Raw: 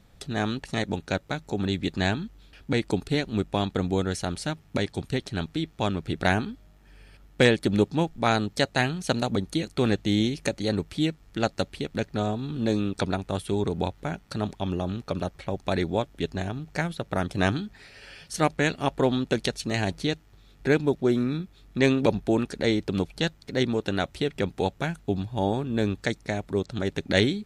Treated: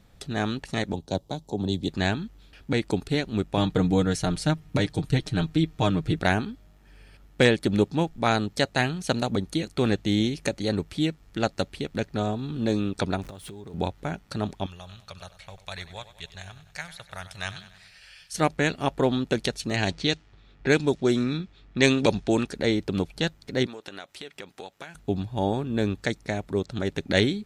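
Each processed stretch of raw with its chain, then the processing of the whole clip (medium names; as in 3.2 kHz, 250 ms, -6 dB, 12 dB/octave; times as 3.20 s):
0.93–1.89 s: high-order bell 1.8 kHz -15.5 dB 1.3 oct + three bands expanded up and down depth 40%
3.57–6.19 s: bass shelf 160 Hz +7.5 dB + comb 6.5 ms, depth 70%
13.22–13.74 s: jump at every zero crossing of -39 dBFS + compression 16:1, threshold -37 dBFS
14.66–18.35 s: amplifier tone stack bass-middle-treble 10-0-10 + feedback delay 96 ms, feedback 57%, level -14.5 dB
19.76–22.47 s: level-controlled noise filter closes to 2 kHz, open at -16.5 dBFS + low-pass 9.7 kHz 24 dB/octave + treble shelf 2.8 kHz +11.5 dB
23.66–24.95 s: high-pass 890 Hz 6 dB/octave + compression 4:1, threshold -36 dBFS
whole clip: none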